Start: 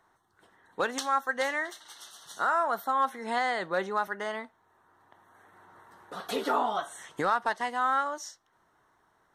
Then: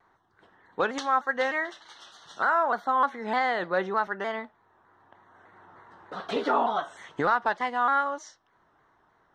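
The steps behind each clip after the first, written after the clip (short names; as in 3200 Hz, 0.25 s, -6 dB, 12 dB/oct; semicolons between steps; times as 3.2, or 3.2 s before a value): air absorption 150 m; shaped vibrato saw down 3.3 Hz, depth 100 cents; gain +3.5 dB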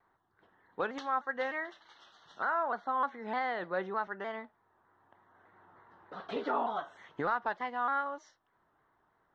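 air absorption 140 m; gain -7 dB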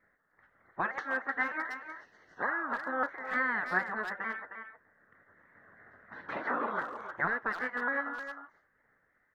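spectral gate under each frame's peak -10 dB weak; resonant high shelf 2400 Hz -9.5 dB, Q 3; speakerphone echo 0.31 s, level -8 dB; gain +6.5 dB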